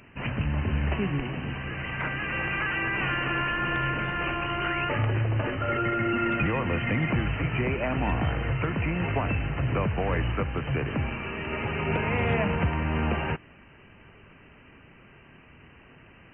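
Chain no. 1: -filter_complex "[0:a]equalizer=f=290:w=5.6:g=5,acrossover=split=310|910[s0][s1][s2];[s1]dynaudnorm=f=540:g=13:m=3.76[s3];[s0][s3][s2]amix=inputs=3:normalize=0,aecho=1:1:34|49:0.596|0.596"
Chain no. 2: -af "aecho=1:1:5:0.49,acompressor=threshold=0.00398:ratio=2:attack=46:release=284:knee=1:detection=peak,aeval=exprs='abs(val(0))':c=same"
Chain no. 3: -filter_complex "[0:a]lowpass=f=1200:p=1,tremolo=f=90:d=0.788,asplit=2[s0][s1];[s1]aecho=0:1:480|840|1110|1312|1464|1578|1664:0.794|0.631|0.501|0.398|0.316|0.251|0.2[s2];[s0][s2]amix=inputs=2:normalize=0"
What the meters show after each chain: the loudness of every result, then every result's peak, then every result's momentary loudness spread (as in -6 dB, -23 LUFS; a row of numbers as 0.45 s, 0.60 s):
-21.0 LUFS, -43.0 LUFS, -29.0 LUFS; -5.5 dBFS, -25.0 dBFS, -12.5 dBFS; 10 LU, 14 LU, 5 LU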